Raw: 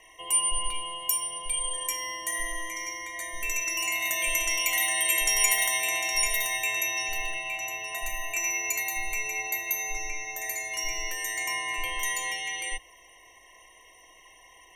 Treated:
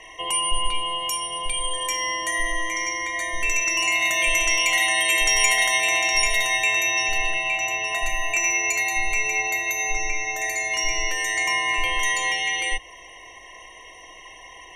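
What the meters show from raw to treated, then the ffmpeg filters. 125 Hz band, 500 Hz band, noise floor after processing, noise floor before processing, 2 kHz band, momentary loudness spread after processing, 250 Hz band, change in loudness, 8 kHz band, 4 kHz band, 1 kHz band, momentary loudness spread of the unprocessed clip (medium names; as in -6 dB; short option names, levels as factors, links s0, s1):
no reading, +8.5 dB, -45 dBFS, -55 dBFS, +8.0 dB, 7 LU, +8.5 dB, +6.0 dB, +2.5 dB, +7.5 dB, +8.5 dB, 10 LU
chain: -filter_complex "[0:a]asplit=2[s0][s1];[s1]acompressor=threshold=0.0178:ratio=6,volume=0.75[s2];[s0][s2]amix=inputs=2:normalize=0,lowpass=6000,acontrast=57"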